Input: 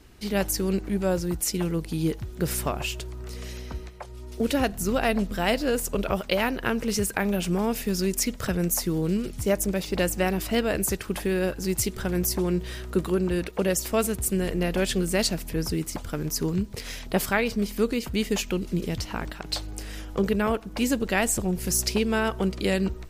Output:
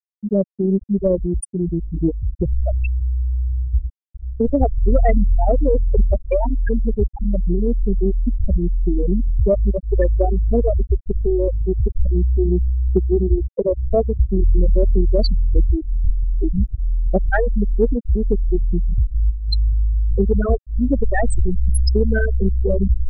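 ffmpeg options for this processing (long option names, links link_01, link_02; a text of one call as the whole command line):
ffmpeg -i in.wav -filter_complex "[0:a]asubboost=boost=8:cutoff=53,afftfilt=real='re*gte(hypot(re,im),0.316)':imag='im*gte(hypot(re,im),0.316)':win_size=1024:overlap=0.75,asplit=2[link_01][link_02];[link_02]acompressor=threshold=-32dB:ratio=6,volume=-2dB[link_03];[link_01][link_03]amix=inputs=2:normalize=0,aeval=exprs='0.335*(cos(1*acos(clip(val(0)/0.335,-1,1)))-cos(1*PI/2))+0.0075*(cos(4*acos(clip(val(0)/0.335,-1,1)))-cos(4*PI/2))':channel_layout=same,volume=7dB" out.wav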